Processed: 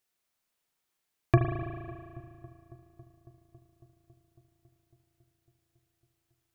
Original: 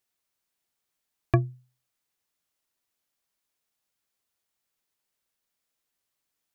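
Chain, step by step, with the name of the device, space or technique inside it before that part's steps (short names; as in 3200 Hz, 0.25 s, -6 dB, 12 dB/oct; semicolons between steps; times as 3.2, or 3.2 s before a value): dub delay into a spring reverb (darkening echo 0.276 s, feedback 81%, low-pass 1900 Hz, level -21.5 dB; spring tank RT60 2.1 s, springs 36 ms, chirp 75 ms, DRR 2.5 dB)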